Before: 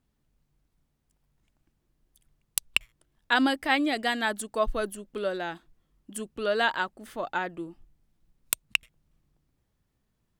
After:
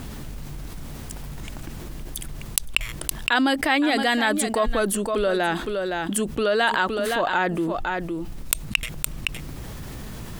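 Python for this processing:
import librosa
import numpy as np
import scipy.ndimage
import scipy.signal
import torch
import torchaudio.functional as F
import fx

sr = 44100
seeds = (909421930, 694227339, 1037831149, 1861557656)

y = x + 10.0 ** (-14.0 / 20.0) * np.pad(x, (int(515 * sr / 1000.0), 0))[:len(x)]
y = fx.env_flatten(y, sr, amount_pct=70)
y = y * librosa.db_to_amplitude(1.5)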